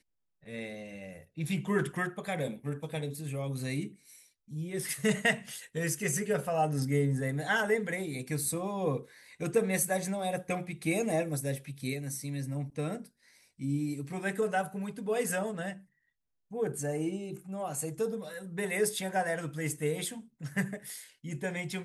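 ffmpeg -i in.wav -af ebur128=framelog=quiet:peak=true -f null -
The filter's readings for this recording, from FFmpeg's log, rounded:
Integrated loudness:
  I:         -33.1 LUFS
  Threshold: -43.6 LUFS
Loudness range:
  LRA:         4.9 LU
  Threshold: -53.3 LUFS
  LRA low:   -35.7 LUFS
  LRA high:  -30.8 LUFS
True peak:
  Peak:      -13.8 dBFS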